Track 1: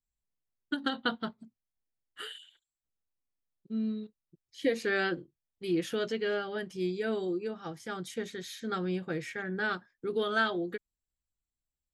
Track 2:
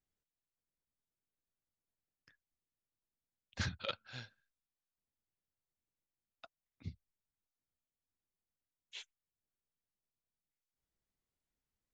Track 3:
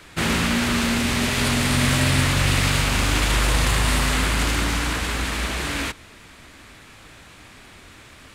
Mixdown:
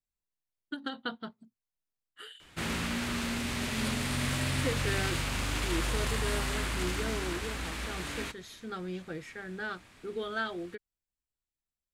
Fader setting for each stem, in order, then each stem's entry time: -5.5, -10.5, -12.0 dB; 0.00, 0.00, 2.40 s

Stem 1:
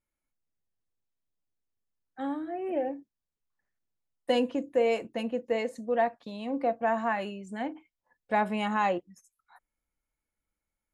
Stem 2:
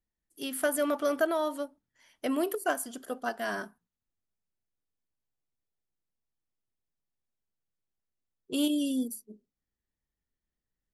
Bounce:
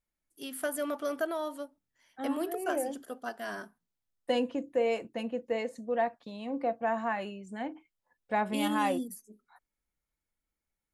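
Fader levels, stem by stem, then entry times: -3.0, -5.0 dB; 0.00, 0.00 s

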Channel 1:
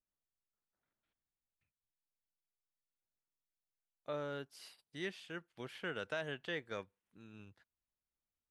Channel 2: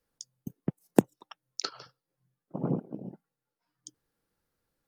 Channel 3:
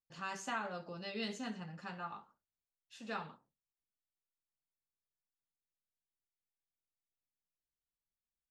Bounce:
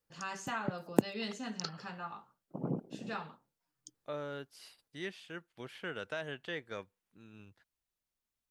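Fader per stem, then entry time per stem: +0.5, -6.0, +1.0 dB; 0.00, 0.00, 0.00 s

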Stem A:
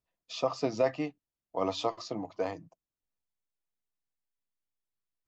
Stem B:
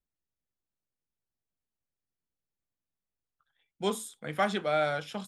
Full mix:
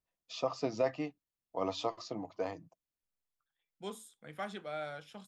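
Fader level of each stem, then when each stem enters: -4.0, -12.5 dB; 0.00, 0.00 s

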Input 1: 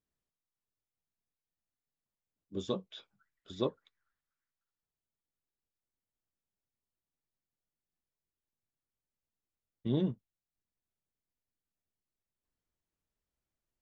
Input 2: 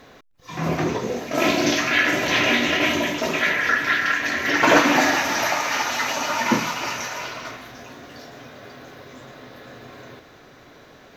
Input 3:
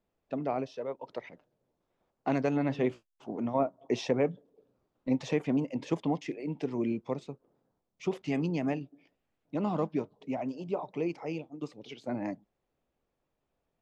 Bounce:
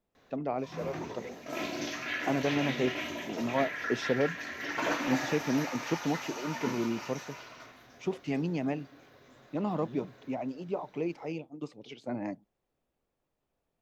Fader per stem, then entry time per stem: -15.5, -16.0, -1.0 dB; 0.00, 0.15, 0.00 s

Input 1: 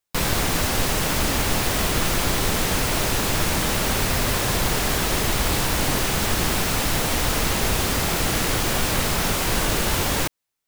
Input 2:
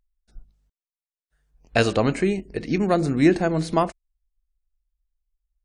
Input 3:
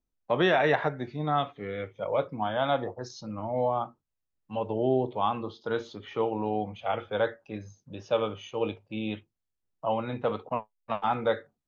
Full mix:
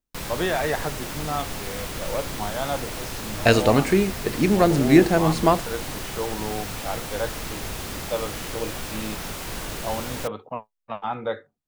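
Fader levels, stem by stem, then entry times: -10.5, +2.5, -1.5 dB; 0.00, 1.70, 0.00 s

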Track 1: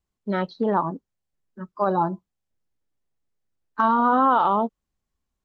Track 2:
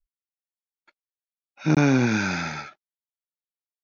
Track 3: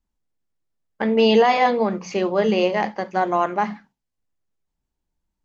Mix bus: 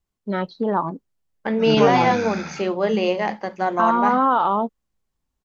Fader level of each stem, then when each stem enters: +0.5, -5.0, -1.5 dB; 0.00, 0.00, 0.45 s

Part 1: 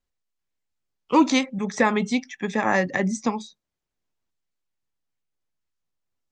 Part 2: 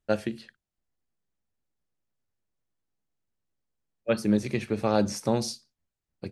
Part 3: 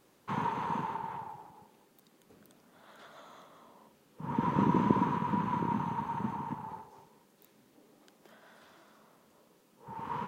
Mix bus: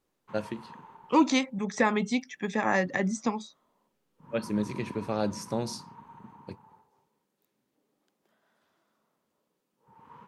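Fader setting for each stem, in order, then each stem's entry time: -4.5, -5.5, -14.5 dB; 0.00, 0.25, 0.00 s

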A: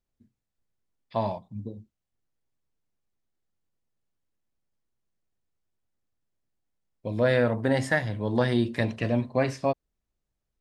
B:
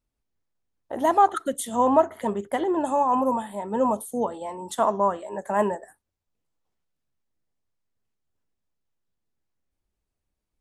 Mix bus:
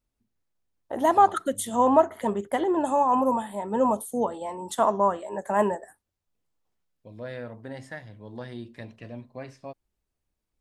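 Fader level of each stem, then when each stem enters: -14.5, 0.0 dB; 0.00, 0.00 s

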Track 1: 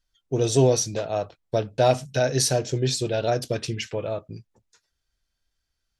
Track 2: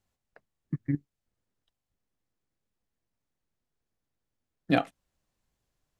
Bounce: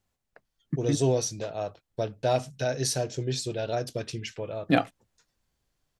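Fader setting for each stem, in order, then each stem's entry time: -6.0, +2.0 dB; 0.45, 0.00 s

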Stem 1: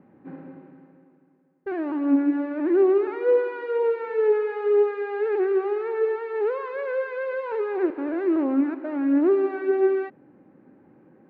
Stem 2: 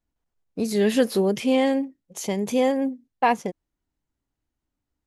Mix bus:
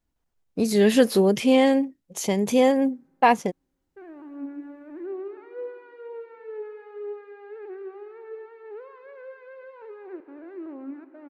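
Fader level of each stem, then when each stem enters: -15.5, +2.5 dB; 2.30, 0.00 s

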